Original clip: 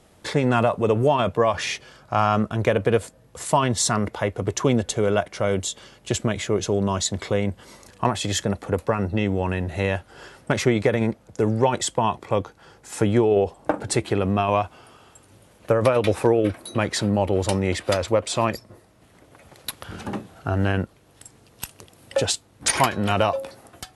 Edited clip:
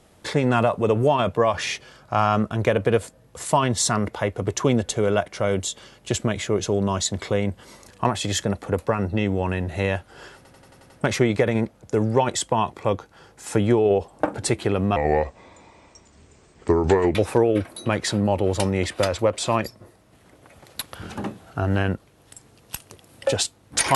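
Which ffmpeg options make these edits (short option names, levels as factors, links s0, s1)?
-filter_complex "[0:a]asplit=9[s0][s1][s2][s3][s4][s5][s6][s7][s8];[s0]atrim=end=10.452[s9];[s1]atrim=start=10.358:end=10.452[s10];[s2]atrim=start=10.358:end=10.452[s11];[s3]atrim=start=10.358:end=10.452[s12];[s4]atrim=start=10.358:end=10.452[s13];[s5]atrim=start=10.358:end=10.452[s14];[s6]atrim=start=10.358:end=14.424[s15];[s7]atrim=start=14.42:end=16.04,asetpts=PTS-STARTPTS,asetrate=32634,aresample=44100,atrim=end_sample=96543,asetpts=PTS-STARTPTS[s16];[s8]atrim=start=16.036[s17];[s9][s10]acrossfade=d=0.004:c1=hsin:c2=hsin[s18];[s18][s11]acrossfade=d=0.004:c1=hsin:c2=hsin[s19];[s19][s12]acrossfade=d=0.004:c1=hsin:c2=hsin[s20];[s20][s13]acrossfade=d=0.004:c1=hsin:c2=hsin[s21];[s21][s14]acrossfade=d=0.004:c1=hsin:c2=hsin[s22];[s22][s15]acrossfade=d=0.004:c1=hsin:c2=hsin[s23];[s23][s16]acrossfade=d=0.004:c1=hsin:c2=hsin[s24];[s24][s17]acrossfade=d=0.004:c1=hsin:c2=hsin"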